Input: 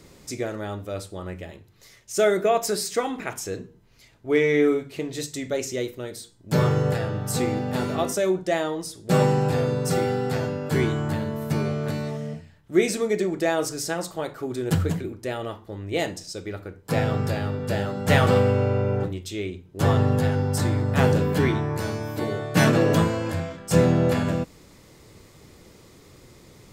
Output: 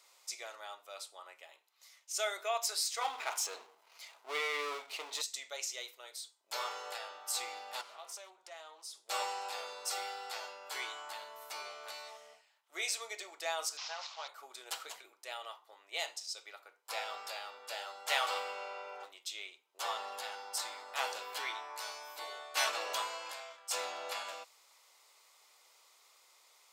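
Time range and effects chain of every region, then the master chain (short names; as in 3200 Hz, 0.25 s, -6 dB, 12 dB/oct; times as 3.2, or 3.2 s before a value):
3.01–5.22 tilt shelf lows +4.5 dB, about 1200 Hz + power-law curve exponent 0.7
7.81–9.06 compressor 2.5:1, threshold -37 dBFS + Doppler distortion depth 0.22 ms
13.77–14.28 delta modulation 32 kbps, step -35 dBFS + HPF 600 Hz
whole clip: dynamic EQ 4300 Hz, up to +5 dB, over -46 dBFS, Q 0.86; HPF 790 Hz 24 dB/oct; bell 1700 Hz -8 dB 0.37 oct; gain -7.5 dB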